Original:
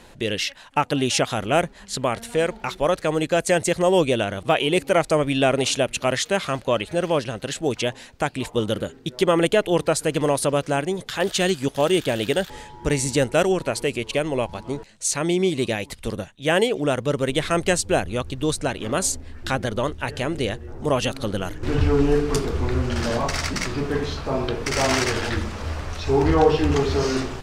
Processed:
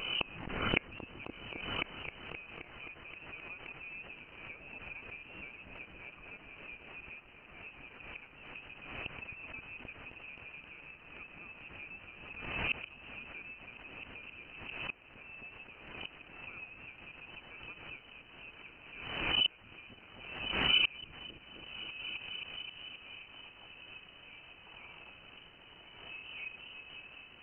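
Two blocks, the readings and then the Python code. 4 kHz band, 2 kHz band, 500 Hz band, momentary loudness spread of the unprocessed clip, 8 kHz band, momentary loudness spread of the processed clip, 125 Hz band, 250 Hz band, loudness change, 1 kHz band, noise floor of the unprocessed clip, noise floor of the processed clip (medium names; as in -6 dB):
-8.5 dB, -12.0 dB, -31.5 dB, 8 LU, under -40 dB, 17 LU, -26.0 dB, -26.5 dB, -17.0 dB, -23.0 dB, -47 dBFS, -57 dBFS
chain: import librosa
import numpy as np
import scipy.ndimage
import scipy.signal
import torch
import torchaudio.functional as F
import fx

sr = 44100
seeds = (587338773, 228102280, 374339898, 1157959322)

y = fx.low_shelf(x, sr, hz=280.0, db=-2.5)
y = fx.fixed_phaser(y, sr, hz=450.0, stages=4)
y = fx.echo_feedback(y, sr, ms=1049, feedback_pct=44, wet_db=-11.5)
y = fx.gate_flip(y, sr, shuts_db=-26.0, range_db=-35)
y = fx.quant_dither(y, sr, seeds[0], bits=10, dither='triangular')
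y = fx.freq_invert(y, sr, carrier_hz=3000)
y = fx.echo_opening(y, sr, ms=263, hz=200, octaves=1, feedback_pct=70, wet_db=0)
y = fx.transient(y, sr, attack_db=3, sustain_db=-5)
y = fx.pre_swell(y, sr, db_per_s=47.0)
y = F.gain(torch.from_numpy(y), 6.0).numpy()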